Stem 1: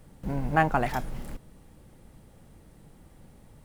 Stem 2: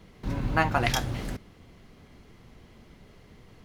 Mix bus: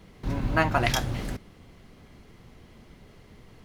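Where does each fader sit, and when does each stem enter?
-10.5, +1.0 dB; 0.00, 0.00 s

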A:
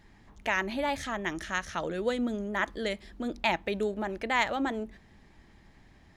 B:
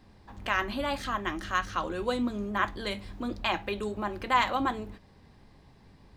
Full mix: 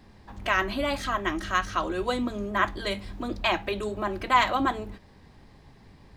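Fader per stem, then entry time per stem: -4.5, +3.0 dB; 0.00, 0.00 s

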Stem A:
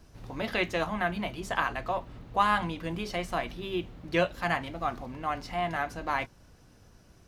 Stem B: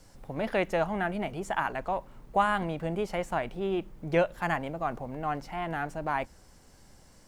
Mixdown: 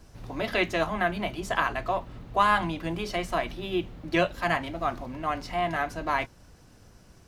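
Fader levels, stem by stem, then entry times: +2.5, -7.5 dB; 0.00, 0.00 s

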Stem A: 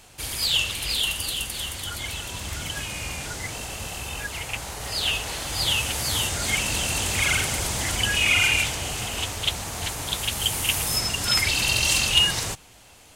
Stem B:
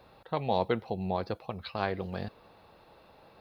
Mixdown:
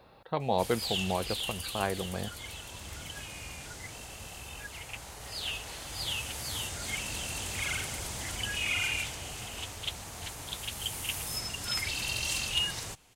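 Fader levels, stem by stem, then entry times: -11.0, 0.0 dB; 0.40, 0.00 s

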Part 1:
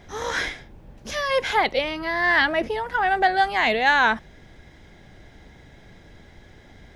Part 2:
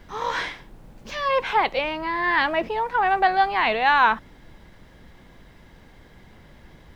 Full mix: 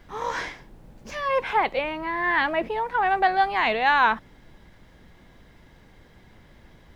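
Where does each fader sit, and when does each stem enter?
-14.0, -3.5 dB; 0.00, 0.00 s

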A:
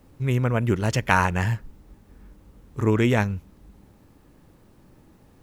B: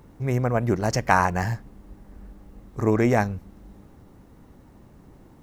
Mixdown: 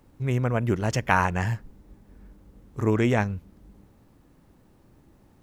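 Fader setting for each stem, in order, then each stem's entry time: -5.5, -11.0 dB; 0.00, 0.00 s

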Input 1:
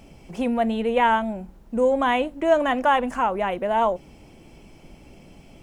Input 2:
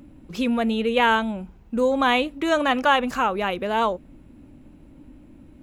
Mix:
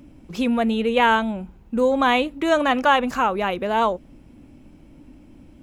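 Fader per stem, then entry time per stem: -11.5, 0.0 dB; 0.00, 0.00 s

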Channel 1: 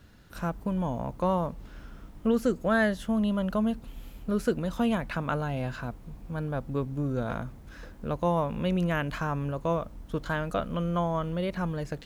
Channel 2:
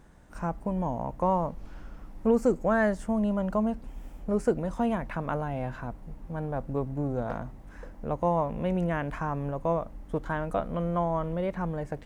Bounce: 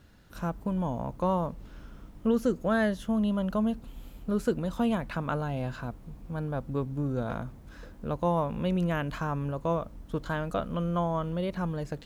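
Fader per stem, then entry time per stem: -2.5, -12.5 dB; 0.00, 0.00 s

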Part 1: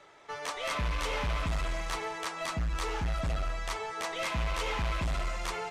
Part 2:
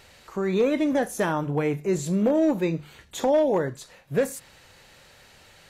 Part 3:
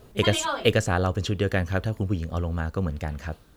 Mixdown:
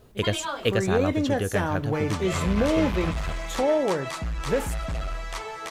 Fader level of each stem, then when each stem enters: +1.5, -2.0, -3.5 dB; 1.65, 0.35, 0.00 s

